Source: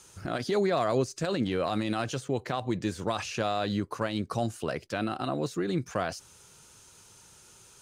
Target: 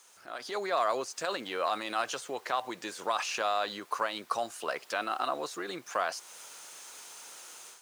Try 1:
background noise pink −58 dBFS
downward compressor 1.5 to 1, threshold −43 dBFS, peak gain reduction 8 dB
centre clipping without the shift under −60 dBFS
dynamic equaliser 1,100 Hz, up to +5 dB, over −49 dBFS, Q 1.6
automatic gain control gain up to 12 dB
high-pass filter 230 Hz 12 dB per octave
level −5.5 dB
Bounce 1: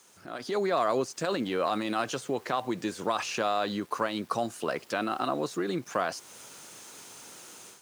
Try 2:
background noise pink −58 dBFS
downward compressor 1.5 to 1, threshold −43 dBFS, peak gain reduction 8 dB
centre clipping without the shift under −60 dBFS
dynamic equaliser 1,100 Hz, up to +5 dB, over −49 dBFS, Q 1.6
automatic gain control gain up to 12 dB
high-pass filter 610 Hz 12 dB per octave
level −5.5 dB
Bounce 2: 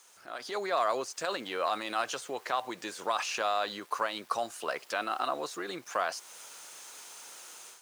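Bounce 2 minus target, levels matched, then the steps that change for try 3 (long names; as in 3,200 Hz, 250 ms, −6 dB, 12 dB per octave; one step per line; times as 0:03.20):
centre clipping without the shift: distortion +12 dB
change: centre clipping without the shift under −68 dBFS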